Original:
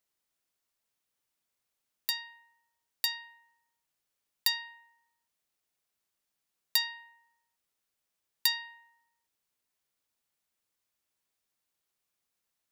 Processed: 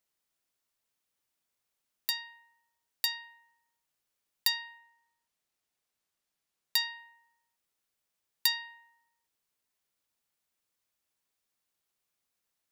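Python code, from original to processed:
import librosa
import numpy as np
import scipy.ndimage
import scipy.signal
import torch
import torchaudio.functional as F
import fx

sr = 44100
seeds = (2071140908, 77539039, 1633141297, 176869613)

y = fx.high_shelf(x, sr, hz=11000.0, db=-5.0, at=(4.78, 6.79))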